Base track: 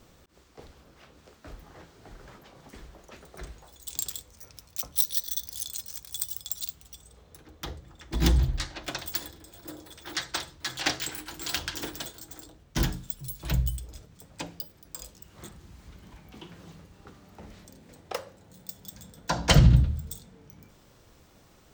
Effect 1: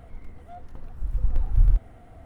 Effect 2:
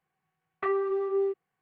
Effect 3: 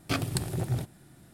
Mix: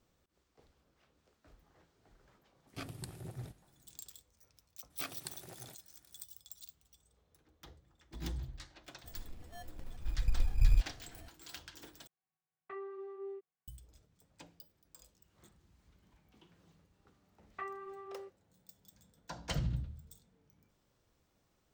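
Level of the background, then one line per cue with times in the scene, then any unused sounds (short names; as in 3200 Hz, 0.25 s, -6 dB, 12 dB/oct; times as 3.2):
base track -18 dB
2.67 add 3 -15.5 dB
4.9 add 3 -11 dB + HPF 800 Hz 6 dB/oct
9.04 add 1 -7.5 dB + sample-and-hold 18×
12.07 replace with 2 -17 dB + HPF 71 Hz
16.96 add 2 -10 dB + bell 420 Hz -14.5 dB 0.37 oct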